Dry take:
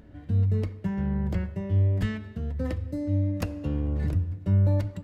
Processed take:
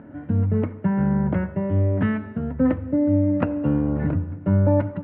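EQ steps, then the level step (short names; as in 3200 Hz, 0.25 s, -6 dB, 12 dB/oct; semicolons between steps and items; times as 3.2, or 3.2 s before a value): air absorption 300 m; speaker cabinet 130–2700 Hz, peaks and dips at 140 Hz +4 dB, 260 Hz +9 dB, 590 Hz +5 dB, 900 Hz +7 dB, 1400 Hz +8 dB; +7.0 dB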